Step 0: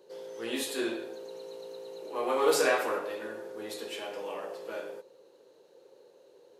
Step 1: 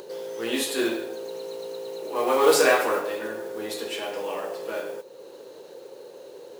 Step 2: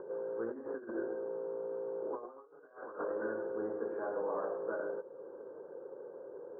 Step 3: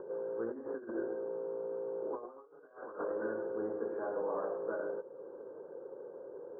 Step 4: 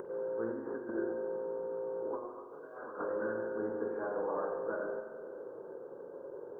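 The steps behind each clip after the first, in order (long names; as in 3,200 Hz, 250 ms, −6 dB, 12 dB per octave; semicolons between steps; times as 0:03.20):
in parallel at +1.5 dB: upward compression, threshold −35 dBFS; on the sum: noise that follows the level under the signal 22 dB
compressor whose output falls as the input rises −30 dBFS, ratio −0.5; Chebyshev low-pass with heavy ripple 1,600 Hz, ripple 3 dB; level −7.5 dB
high-frequency loss of the air 420 metres; level +1.5 dB
upward compression, threshold −48 dBFS; dynamic equaliser 530 Hz, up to −6 dB, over −50 dBFS, Q 0.71; spring reverb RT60 2 s, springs 44 ms, chirp 30 ms, DRR 5.5 dB; level +4.5 dB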